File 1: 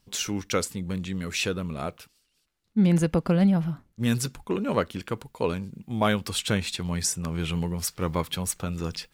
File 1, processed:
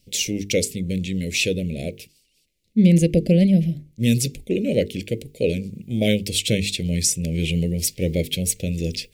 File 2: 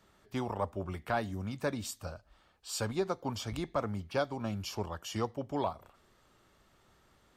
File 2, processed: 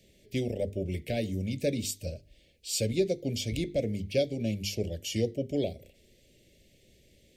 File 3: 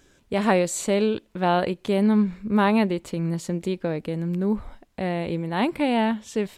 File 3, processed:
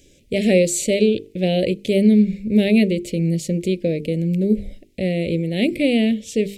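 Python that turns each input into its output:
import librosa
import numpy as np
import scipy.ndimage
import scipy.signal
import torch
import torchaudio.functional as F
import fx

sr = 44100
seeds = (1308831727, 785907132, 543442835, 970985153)

y = scipy.signal.sosfilt(scipy.signal.cheby1(3, 1.0, [560.0, 2200.0], 'bandstop', fs=sr, output='sos'), x)
y = fx.hum_notches(y, sr, base_hz=50, count=9)
y = y * librosa.db_to_amplitude(7.0)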